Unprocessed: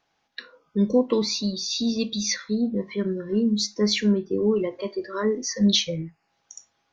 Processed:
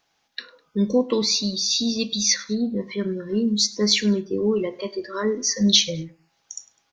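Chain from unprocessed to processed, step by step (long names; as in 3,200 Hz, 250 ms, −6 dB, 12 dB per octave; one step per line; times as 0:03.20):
high-shelf EQ 3,300 Hz +9 dB
repeating echo 102 ms, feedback 33%, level −22 dB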